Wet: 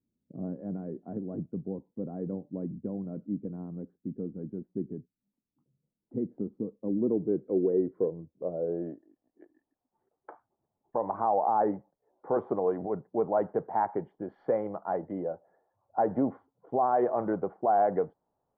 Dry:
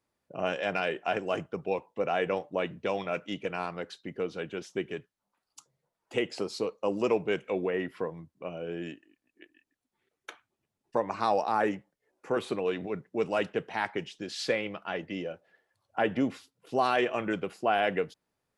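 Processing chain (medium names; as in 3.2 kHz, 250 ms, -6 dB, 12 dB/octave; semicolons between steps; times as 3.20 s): low-pass sweep 240 Hz -> 820 Hz, 6.74–9.51 s; peak limiter -17 dBFS, peak gain reduction 7.5 dB; Savitzky-Golay filter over 41 samples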